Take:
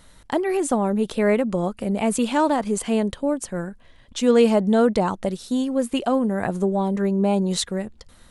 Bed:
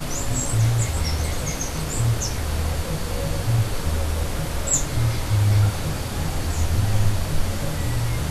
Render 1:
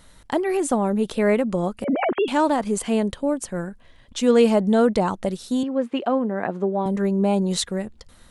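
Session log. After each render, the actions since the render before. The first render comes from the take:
0:01.84–0:02.28: three sine waves on the formant tracks
0:05.63–0:06.86: band-pass filter 220–2,700 Hz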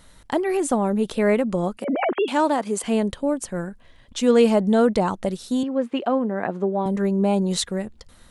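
0:01.77–0:02.84: high-pass filter 230 Hz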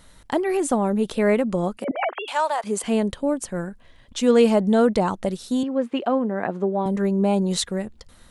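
0:01.91–0:02.64: high-pass filter 610 Hz 24 dB per octave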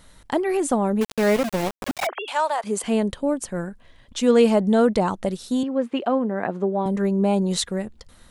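0:01.01–0:02.07: centre clipping without the shift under −23 dBFS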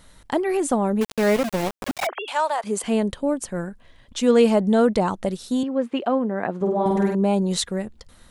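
0:06.56–0:07.15: flutter between parallel walls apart 8.5 metres, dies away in 1 s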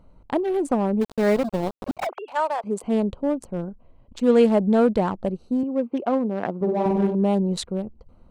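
adaptive Wiener filter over 25 samples
high-shelf EQ 4,000 Hz −7 dB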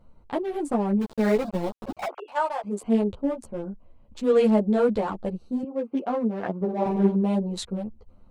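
string-ensemble chorus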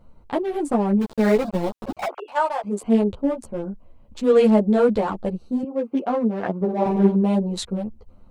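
level +4 dB

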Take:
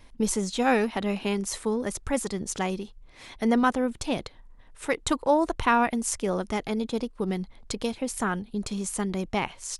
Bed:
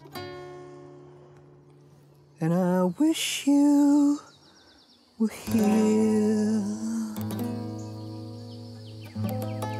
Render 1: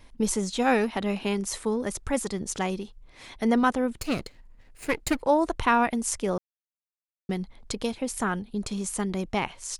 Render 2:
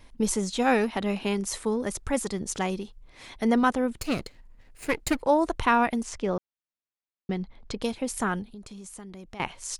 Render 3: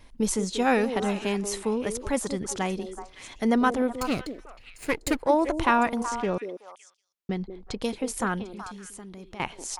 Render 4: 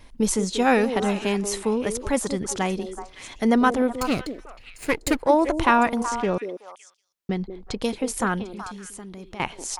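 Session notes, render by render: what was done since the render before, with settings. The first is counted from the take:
0:04.01–0:05.21: lower of the sound and its delayed copy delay 0.42 ms; 0:06.38–0:07.29: silence
0:06.03–0:07.82: high-frequency loss of the air 110 metres; 0:08.45–0:09.40: downward compressor 3 to 1, threshold −44 dBFS
echo through a band-pass that steps 187 ms, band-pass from 380 Hz, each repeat 1.4 octaves, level −5.5 dB
level +3.5 dB

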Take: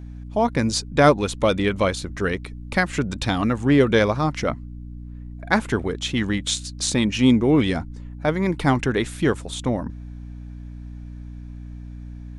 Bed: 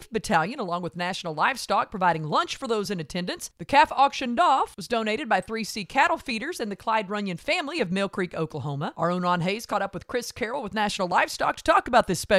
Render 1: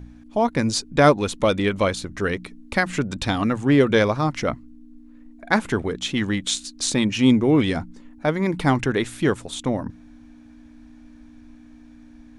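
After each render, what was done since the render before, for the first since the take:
hum removal 60 Hz, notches 3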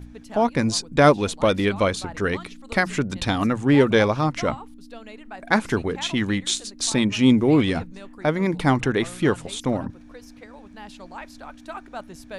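mix in bed −16.5 dB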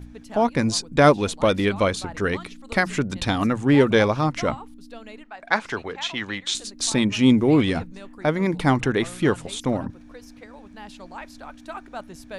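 0:05.24–0:06.55: three-way crossover with the lows and the highs turned down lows −12 dB, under 520 Hz, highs −18 dB, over 6,800 Hz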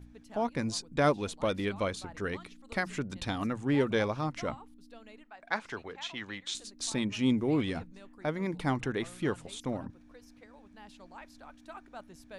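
level −11 dB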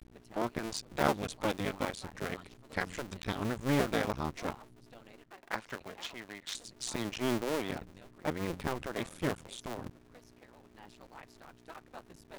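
sub-harmonics by changed cycles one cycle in 2, muted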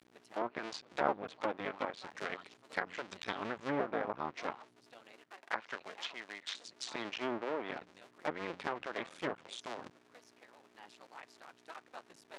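meter weighting curve A
treble cut that deepens with the level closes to 1,200 Hz, closed at −31 dBFS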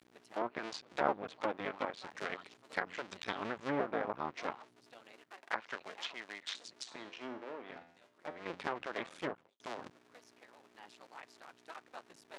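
0:06.83–0:08.46: tuned comb filter 85 Hz, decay 0.67 s, mix 70%
0:09.18–0:09.60: fade out and dull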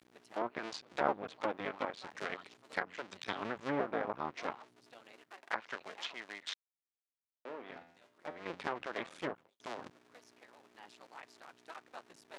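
0:02.83–0:03.56: multiband upward and downward expander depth 40%
0:06.54–0:07.45: silence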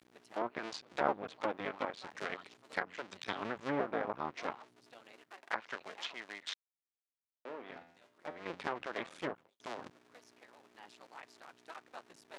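no processing that can be heard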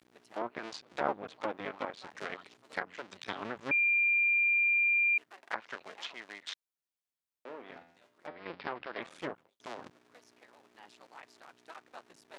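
0:03.71–0:05.18: beep over 2,390 Hz −24 dBFS
0:08.27–0:09.02: elliptic low-pass filter 5,000 Hz

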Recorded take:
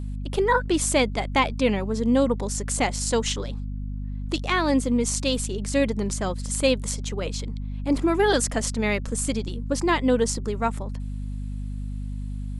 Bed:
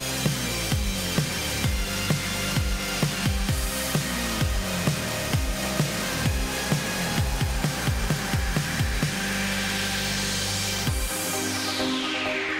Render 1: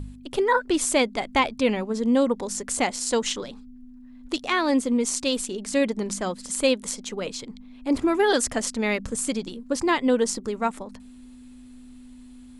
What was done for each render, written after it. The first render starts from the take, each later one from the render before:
hum removal 50 Hz, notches 4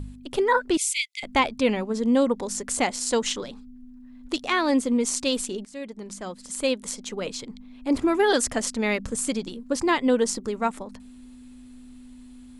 0:00.77–0:01.23: linear-phase brick-wall high-pass 2,000 Hz
0:05.65–0:07.27: fade in, from −18.5 dB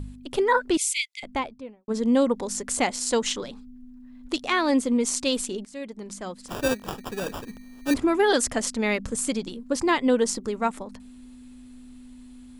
0:00.94–0:01.88: fade out and dull
0:06.48–0:07.94: sample-rate reduction 2,100 Hz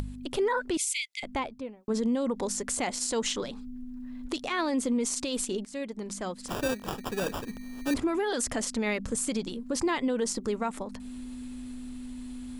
brickwall limiter −20.5 dBFS, peak gain reduction 11.5 dB
upward compression, threshold −32 dBFS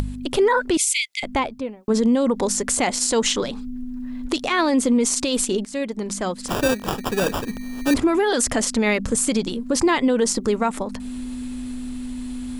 level +9.5 dB

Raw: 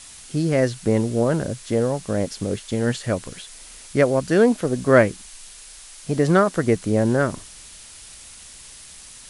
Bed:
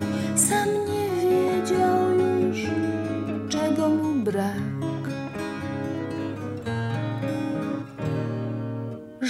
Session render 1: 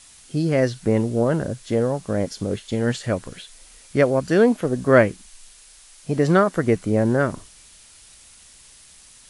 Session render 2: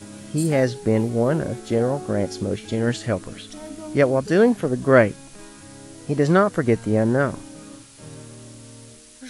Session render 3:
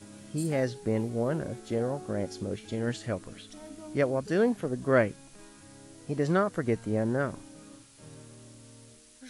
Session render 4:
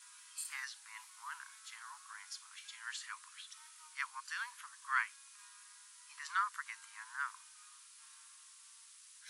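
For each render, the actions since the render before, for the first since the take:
noise reduction from a noise print 6 dB
mix in bed −13.5 dB
level −9 dB
Butterworth high-pass 970 Hz 96 dB per octave; parametric band 2,100 Hz −3 dB 2.9 octaves

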